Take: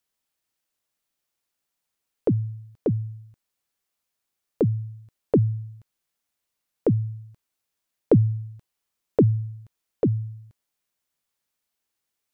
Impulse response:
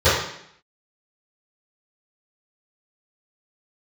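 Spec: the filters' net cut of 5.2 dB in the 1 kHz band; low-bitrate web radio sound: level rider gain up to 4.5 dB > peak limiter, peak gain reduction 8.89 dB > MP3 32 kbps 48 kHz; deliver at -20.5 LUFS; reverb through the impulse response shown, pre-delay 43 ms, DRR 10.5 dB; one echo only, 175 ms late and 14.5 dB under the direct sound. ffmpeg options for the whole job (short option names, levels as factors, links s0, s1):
-filter_complex "[0:a]equalizer=f=1000:t=o:g=-8,aecho=1:1:175:0.188,asplit=2[s0][s1];[1:a]atrim=start_sample=2205,adelay=43[s2];[s1][s2]afir=irnorm=-1:irlink=0,volume=0.0188[s3];[s0][s3]amix=inputs=2:normalize=0,dynaudnorm=m=1.68,alimiter=limit=0.133:level=0:latency=1,volume=2.51" -ar 48000 -c:a libmp3lame -b:a 32k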